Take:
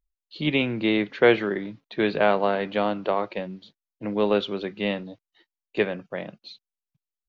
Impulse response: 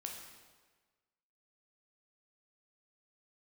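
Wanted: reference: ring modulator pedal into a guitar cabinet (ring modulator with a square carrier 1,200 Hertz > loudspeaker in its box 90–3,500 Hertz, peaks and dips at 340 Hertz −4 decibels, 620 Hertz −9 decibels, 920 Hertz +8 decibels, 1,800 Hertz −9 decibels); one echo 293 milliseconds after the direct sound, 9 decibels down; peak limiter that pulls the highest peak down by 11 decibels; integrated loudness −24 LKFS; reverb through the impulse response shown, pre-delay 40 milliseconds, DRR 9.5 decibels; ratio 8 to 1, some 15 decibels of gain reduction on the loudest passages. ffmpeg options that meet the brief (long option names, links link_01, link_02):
-filter_complex "[0:a]acompressor=threshold=-27dB:ratio=8,alimiter=level_in=1dB:limit=-24dB:level=0:latency=1,volume=-1dB,aecho=1:1:293:0.355,asplit=2[link_01][link_02];[1:a]atrim=start_sample=2205,adelay=40[link_03];[link_02][link_03]afir=irnorm=-1:irlink=0,volume=-7.5dB[link_04];[link_01][link_04]amix=inputs=2:normalize=0,aeval=exprs='val(0)*sgn(sin(2*PI*1200*n/s))':channel_layout=same,highpass=90,equalizer=frequency=340:width_type=q:width=4:gain=-4,equalizer=frequency=620:width_type=q:width=4:gain=-9,equalizer=frequency=920:width_type=q:width=4:gain=8,equalizer=frequency=1800:width_type=q:width=4:gain=-9,lowpass=frequency=3500:width=0.5412,lowpass=frequency=3500:width=1.3066,volume=11dB"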